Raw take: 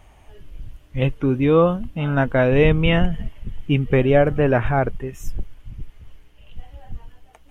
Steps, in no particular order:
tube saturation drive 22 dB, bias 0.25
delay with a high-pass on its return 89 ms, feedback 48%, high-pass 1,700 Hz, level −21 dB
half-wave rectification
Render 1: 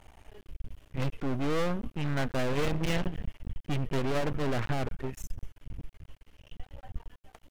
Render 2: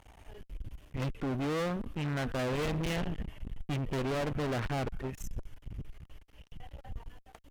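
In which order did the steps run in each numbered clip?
delay with a high-pass on its return, then tube saturation, then half-wave rectification
delay with a high-pass on its return, then half-wave rectification, then tube saturation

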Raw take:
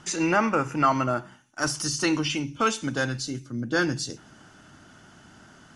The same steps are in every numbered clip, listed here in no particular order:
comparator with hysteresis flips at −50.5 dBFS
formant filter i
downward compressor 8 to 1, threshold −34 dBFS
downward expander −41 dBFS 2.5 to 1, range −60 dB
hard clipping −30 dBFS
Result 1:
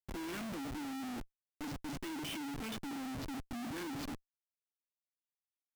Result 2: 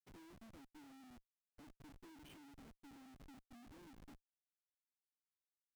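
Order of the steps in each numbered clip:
formant filter, then downward expander, then hard clipping, then downward compressor, then comparator with hysteresis
downward compressor, then hard clipping, then formant filter, then comparator with hysteresis, then downward expander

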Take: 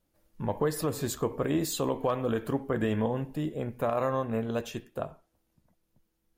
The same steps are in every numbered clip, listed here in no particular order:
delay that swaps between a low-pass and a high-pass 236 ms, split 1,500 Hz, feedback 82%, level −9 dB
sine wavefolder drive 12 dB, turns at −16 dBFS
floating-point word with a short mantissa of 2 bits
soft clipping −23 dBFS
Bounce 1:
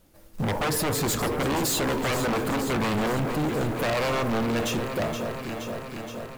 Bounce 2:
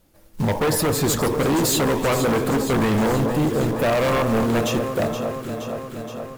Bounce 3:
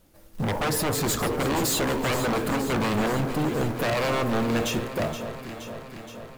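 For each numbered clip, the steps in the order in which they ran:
sine wavefolder, then delay that swaps between a low-pass and a high-pass, then floating-point word with a short mantissa, then soft clipping
floating-point word with a short mantissa, then soft clipping, then delay that swaps between a low-pass and a high-pass, then sine wavefolder
sine wavefolder, then floating-point word with a short mantissa, then soft clipping, then delay that swaps between a low-pass and a high-pass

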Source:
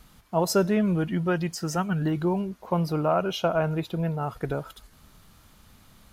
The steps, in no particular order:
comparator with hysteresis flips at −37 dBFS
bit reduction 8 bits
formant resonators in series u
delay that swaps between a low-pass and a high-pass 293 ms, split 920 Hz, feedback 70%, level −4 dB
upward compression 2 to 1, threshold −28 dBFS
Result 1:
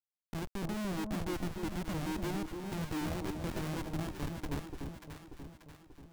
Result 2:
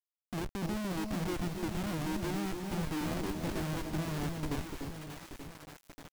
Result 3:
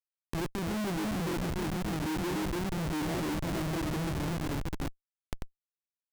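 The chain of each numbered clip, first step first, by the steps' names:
upward compression, then formant resonators in series, then comparator with hysteresis, then bit reduction, then delay that swaps between a low-pass and a high-pass
formant resonators in series, then upward compression, then comparator with hysteresis, then delay that swaps between a low-pass and a high-pass, then bit reduction
formant resonators in series, then bit reduction, then delay that swaps between a low-pass and a high-pass, then comparator with hysteresis, then upward compression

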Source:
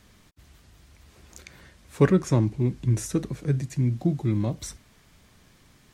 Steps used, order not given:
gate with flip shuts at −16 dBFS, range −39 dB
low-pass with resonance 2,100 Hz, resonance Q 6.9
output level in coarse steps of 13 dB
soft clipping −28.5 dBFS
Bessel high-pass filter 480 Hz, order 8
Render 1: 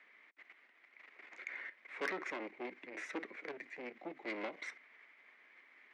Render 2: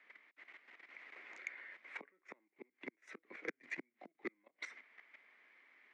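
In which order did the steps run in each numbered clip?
output level in coarse steps, then gate with flip, then low-pass with resonance, then soft clipping, then Bessel high-pass filter
low-pass with resonance, then gate with flip, then output level in coarse steps, then Bessel high-pass filter, then soft clipping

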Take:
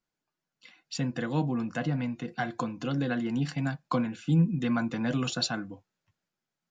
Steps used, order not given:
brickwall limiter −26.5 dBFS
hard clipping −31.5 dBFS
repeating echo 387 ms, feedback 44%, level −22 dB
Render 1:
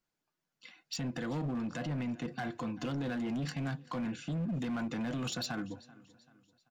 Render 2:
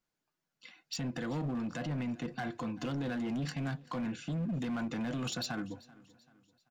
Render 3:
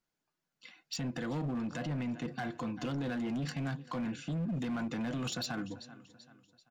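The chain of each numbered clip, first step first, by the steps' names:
brickwall limiter, then repeating echo, then hard clipping
brickwall limiter, then hard clipping, then repeating echo
repeating echo, then brickwall limiter, then hard clipping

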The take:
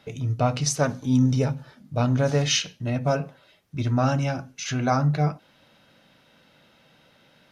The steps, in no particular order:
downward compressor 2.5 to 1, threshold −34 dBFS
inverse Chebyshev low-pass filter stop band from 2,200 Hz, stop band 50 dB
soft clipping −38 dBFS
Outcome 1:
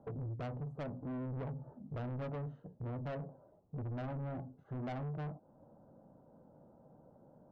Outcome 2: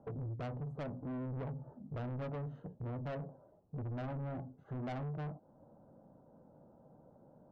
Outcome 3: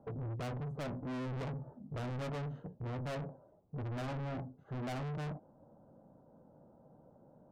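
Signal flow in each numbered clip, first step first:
downward compressor, then inverse Chebyshev low-pass filter, then soft clipping
inverse Chebyshev low-pass filter, then downward compressor, then soft clipping
inverse Chebyshev low-pass filter, then soft clipping, then downward compressor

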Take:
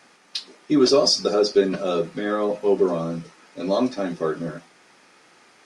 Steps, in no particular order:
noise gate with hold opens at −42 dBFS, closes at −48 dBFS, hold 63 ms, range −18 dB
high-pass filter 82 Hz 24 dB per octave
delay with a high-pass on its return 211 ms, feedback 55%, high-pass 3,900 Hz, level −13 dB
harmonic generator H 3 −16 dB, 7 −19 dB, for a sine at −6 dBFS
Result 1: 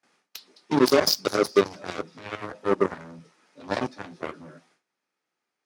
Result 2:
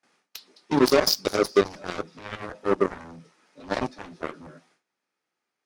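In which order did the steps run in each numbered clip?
delay with a high-pass on its return, then noise gate with hold, then harmonic generator, then high-pass filter
delay with a high-pass on its return, then noise gate with hold, then high-pass filter, then harmonic generator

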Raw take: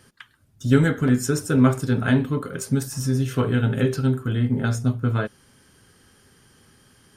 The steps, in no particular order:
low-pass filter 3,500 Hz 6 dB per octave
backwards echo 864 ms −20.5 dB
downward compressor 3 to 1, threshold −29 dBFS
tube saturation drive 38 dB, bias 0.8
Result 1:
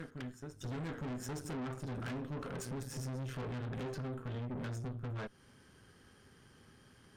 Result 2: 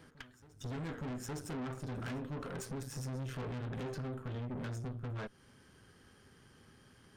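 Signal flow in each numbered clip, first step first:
backwards echo, then downward compressor, then low-pass filter, then tube saturation
downward compressor, then low-pass filter, then tube saturation, then backwards echo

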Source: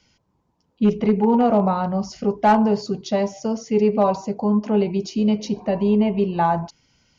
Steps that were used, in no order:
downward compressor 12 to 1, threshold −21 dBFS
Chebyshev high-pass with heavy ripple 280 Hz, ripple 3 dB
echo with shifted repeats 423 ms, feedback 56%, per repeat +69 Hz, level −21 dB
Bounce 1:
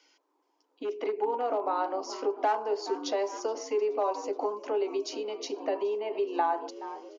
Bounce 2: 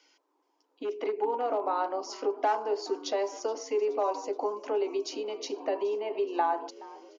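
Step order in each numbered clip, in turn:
echo with shifted repeats, then downward compressor, then Chebyshev high-pass with heavy ripple
downward compressor, then echo with shifted repeats, then Chebyshev high-pass with heavy ripple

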